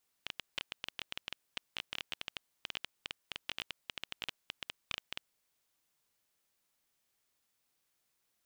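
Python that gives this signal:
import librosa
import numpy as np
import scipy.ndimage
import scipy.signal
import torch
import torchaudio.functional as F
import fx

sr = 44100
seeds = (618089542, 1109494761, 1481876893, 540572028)

y = fx.geiger_clicks(sr, seeds[0], length_s=5.03, per_s=13.0, level_db=-20.0)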